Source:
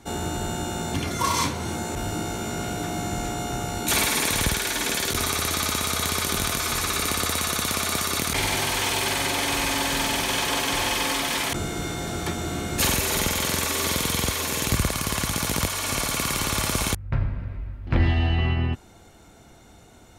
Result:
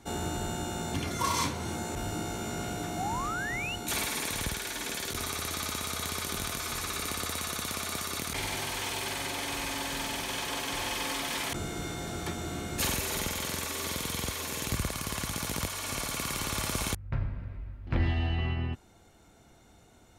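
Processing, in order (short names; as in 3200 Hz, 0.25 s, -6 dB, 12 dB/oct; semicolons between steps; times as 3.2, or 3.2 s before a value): painted sound rise, 2.97–3.76, 690–3000 Hz -27 dBFS; vocal rider within 4 dB 2 s; gain -8.5 dB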